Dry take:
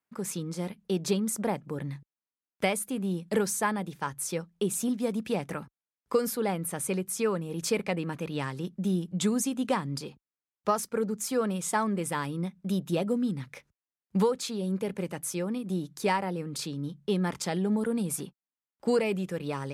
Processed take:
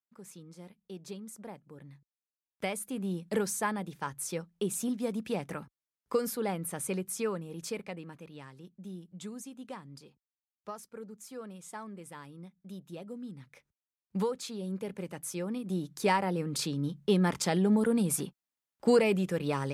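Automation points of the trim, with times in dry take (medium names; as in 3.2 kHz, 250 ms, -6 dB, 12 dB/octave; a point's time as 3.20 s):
1.89 s -15.5 dB
3.00 s -3.5 dB
7.13 s -3.5 dB
8.40 s -15.5 dB
13.01 s -15.5 dB
14.23 s -6 dB
15.05 s -6 dB
16.45 s +2 dB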